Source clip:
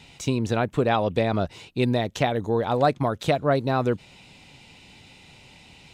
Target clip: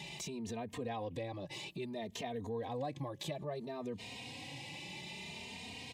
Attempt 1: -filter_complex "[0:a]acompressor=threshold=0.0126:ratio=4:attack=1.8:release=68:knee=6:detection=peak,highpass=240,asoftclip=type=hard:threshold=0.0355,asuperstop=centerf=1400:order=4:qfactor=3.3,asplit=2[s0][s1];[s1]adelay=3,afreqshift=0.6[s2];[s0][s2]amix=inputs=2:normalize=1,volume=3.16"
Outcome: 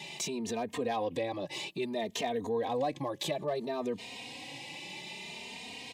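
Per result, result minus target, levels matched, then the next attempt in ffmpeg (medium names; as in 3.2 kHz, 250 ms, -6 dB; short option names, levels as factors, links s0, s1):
compression: peak gain reduction -8.5 dB; 125 Hz band -7.5 dB
-filter_complex "[0:a]acompressor=threshold=0.00335:ratio=4:attack=1.8:release=68:knee=6:detection=peak,highpass=240,asoftclip=type=hard:threshold=0.0355,asuperstop=centerf=1400:order=4:qfactor=3.3,asplit=2[s0][s1];[s1]adelay=3,afreqshift=0.6[s2];[s0][s2]amix=inputs=2:normalize=1,volume=3.16"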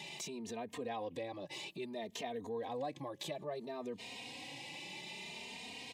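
125 Hz band -8.0 dB
-filter_complex "[0:a]acompressor=threshold=0.00335:ratio=4:attack=1.8:release=68:knee=6:detection=peak,highpass=110,asoftclip=type=hard:threshold=0.0355,asuperstop=centerf=1400:order=4:qfactor=3.3,asplit=2[s0][s1];[s1]adelay=3,afreqshift=0.6[s2];[s0][s2]amix=inputs=2:normalize=1,volume=3.16"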